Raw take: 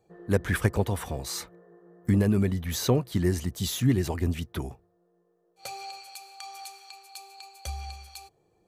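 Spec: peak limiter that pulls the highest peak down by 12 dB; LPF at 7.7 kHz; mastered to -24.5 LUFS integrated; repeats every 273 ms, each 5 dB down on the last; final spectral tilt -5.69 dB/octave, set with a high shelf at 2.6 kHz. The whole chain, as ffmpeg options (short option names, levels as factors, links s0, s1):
-af "lowpass=7700,highshelf=f=2600:g=-4.5,alimiter=limit=0.0891:level=0:latency=1,aecho=1:1:273|546|819|1092|1365|1638|1911:0.562|0.315|0.176|0.0988|0.0553|0.031|0.0173,volume=2.82"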